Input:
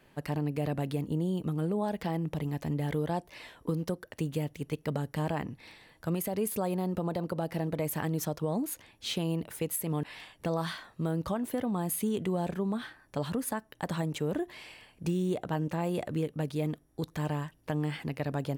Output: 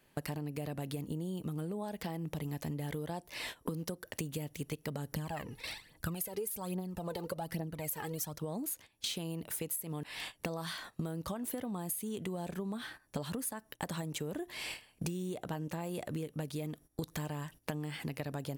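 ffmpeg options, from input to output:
-filter_complex "[0:a]asettb=1/sr,asplit=3[a][b][c];[a]atrim=end=5.124[d];[b]atrim=start=5.12:end=8.38,asetpts=PTS-STARTPTS,afade=t=in:d=0.004:c=qsin,afade=t=out:st=3.256:d=0.004:c=qsin,aphaser=in_gain=1:out_gain=1:delay=2.5:decay=0.67:speed=1.2:type=triangular[e];[c]atrim=start=8.376[f];[d][e]acrossfade=d=0.004:c1=hsin:c2=qsin[g];[g][f]acrossfade=d=0.004:c1=qsin:c2=hsin,agate=range=-17dB:threshold=-49dB:ratio=16:detection=peak,highshelf=f=4.7k:g=10.5,acompressor=threshold=-44dB:ratio=16,volume=9dB"

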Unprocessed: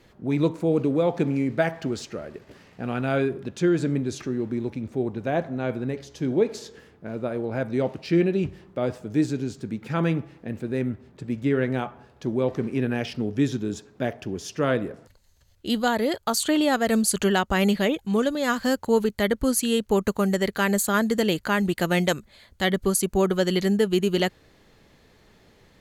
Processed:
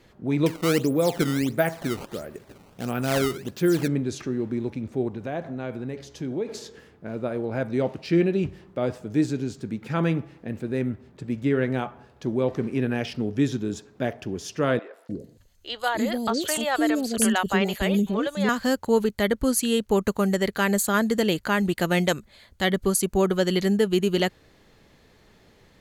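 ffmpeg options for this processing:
-filter_complex "[0:a]asettb=1/sr,asplit=3[a][b][c];[a]atrim=end=0.464[d];[b]atrim=start=0.46:end=3.88,asetpts=PTS-STARTPTS,afade=t=in:d=0.004:c=qsin,afade=t=out:st=3.416:d=0.004:c=qsin,acrusher=samples=15:mix=1:aa=0.000001:lfo=1:lforange=24:lforate=1.5[e];[c]atrim=start=3.876[f];[d][e]acrossfade=d=0.004:c1=hsin:c2=qsin[g];[g][f]acrossfade=d=0.004:c1=qsin:c2=hsin,asettb=1/sr,asplit=3[h][i][j];[h]atrim=end=5.084[k];[i]atrim=start=5.08:end=6.48,asetpts=PTS-STARTPTS,afade=t=in:d=0.004:c=qsin,afade=t=out:st=1.396:d=0.004:c=qsin,acompressor=threshold=-30dB:ratio=2:attack=3.2:release=140:knee=1:detection=peak[l];[j]atrim=start=6.476[m];[k][l]acrossfade=d=0.004:c1=hsin:c2=qsin[n];[n][m]acrossfade=d=0.004:c1=qsin:c2=hsin,asettb=1/sr,asplit=3[o][p][q];[o]atrim=end=14.794[r];[p]atrim=start=14.79:end=18.49,asetpts=PTS-STARTPTS,afade=t=in:d=0.004:c=qsin,afade=t=out:st=3.696:d=0.004:c=qsin,acrossover=split=480|5100[s][t][u];[u]adelay=140[v];[s]adelay=300[w];[w][t][v]amix=inputs=3:normalize=0,atrim=end_sample=163170[x];[q]atrim=start=18.486[y];[r][x]acrossfade=d=0.004:c1=hsin:c2=qsin[z];[z][y]acrossfade=d=0.004:c1=qsin:c2=hsin"

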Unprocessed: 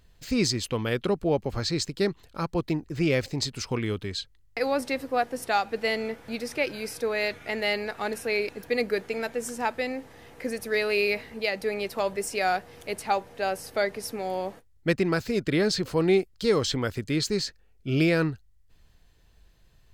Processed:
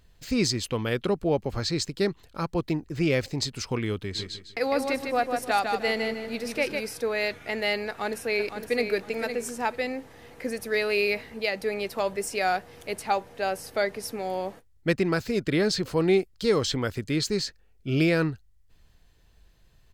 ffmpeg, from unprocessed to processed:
-filter_complex "[0:a]asplit=3[a][b][c];[a]afade=t=out:st=4.14:d=0.02[d];[b]aecho=1:1:153|306|459|612:0.562|0.174|0.054|0.0168,afade=t=in:st=4.14:d=0.02,afade=t=out:st=6.79:d=0.02[e];[c]afade=t=in:st=6.79:d=0.02[f];[d][e][f]amix=inputs=3:normalize=0,asplit=2[g][h];[h]afade=t=in:st=7.87:d=0.01,afade=t=out:st=8.86:d=0.01,aecho=0:1:510|1020|1530:0.375837|0.0939594|0.0234898[i];[g][i]amix=inputs=2:normalize=0"

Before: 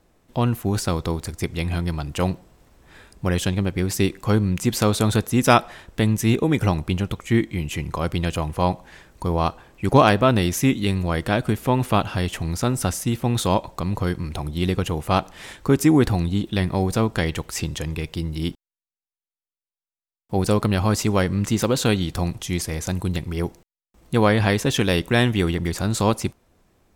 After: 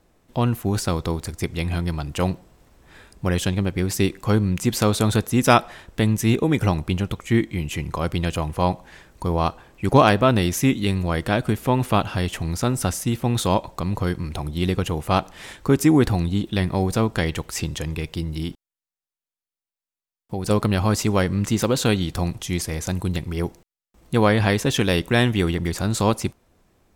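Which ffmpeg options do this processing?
-filter_complex "[0:a]asettb=1/sr,asplit=3[a][b][c];[a]atrim=end=18.234[d];[b]atrim=start=18.23:end=20.5,asetpts=PTS-STARTPTS,afade=t=in:d=0.004:c=qsin,afade=t=out:st=2.266:d=0.004:c=qsin,acompressor=threshold=-22dB:ratio=6:attack=3.2:release=140:knee=1:detection=peak[e];[c]atrim=start=20.496[f];[d][e]acrossfade=d=0.004:c1=hsin:c2=qsin[g];[g][f]acrossfade=d=0.004:c1=qsin:c2=hsin"

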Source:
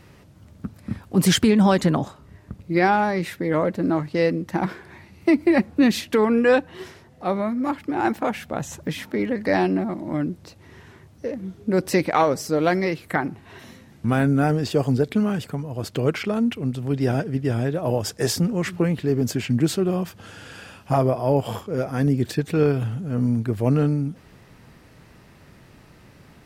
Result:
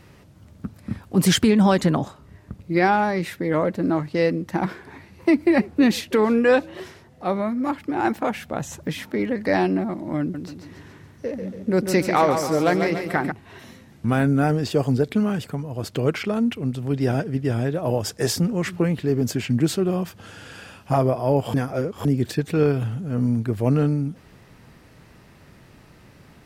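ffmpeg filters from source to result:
-filter_complex "[0:a]asettb=1/sr,asplit=3[a][b][c];[a]atrim=end=4.544[d];[b]atrim=start=4.54:end=6.8,asetpts=PTS-STARTPTS,afade=t=in:d=0.004:c=qsin,afade=t=out:st=2.256:d=0.004:c=qsin,asplit=5[e][f][g][h][i];[f]adelay=323,afreqshift=89,volume=-23dB[j];[g]adelay=646,afreqshift=178,volume=-28dB[k];[h]adelay=969,afreqshift=267,volume=-33.1dB[l];[i]adelay=1292,afreqshift=356,volume=-38.1dB[m];[e][j][k][l][m]amix=inputs=5:normalize=0,atrim=end_sample=99666[n];[c]atrim=start=6.796[o];[d][n]acrossfade=d=0.004:c1=hsin:c2=qsin[p];[p][o]acrossfade=d=0.004:c1=qsin:c2=hsin,asettb=1/sr,asplit=3[q][r][s];[q]atrim=end=10.204[t];[r]atrim=start=10.2:end=13.32,asetpts=PTS-STARTPTS,afade=t=in:d=0.004:c=qsin,afade=t=out:st=3.116:d=0.004:c=qsin,aecho=1:1:141|282|423|564|705|846:0.447|0.223|0.112|0.0558|0.0279|0.014,atrim=end_sample=137592[u];[s]atrim=start=13.316[v];[t][u]acrossfade=d=0.004:c1=hsin:c2=qsin[w];[w][v]acrossfade=d=0.004:c1=qsin:c2=hsin,asplit=3[x][y][z];[x]atrim=end=21.542[aa];[y]atrim=start=21.538:end=22.052,asetpts=PTS-STARTPTS,areverse[ab];[z]atrim=start=22.048[ac];[aa][ab]acrossfade=d=0.004:c1=hsin:c2=hsin[ad];[ad][ac]acrossfade=d=0.004:c1=hsin:c2=hsin"

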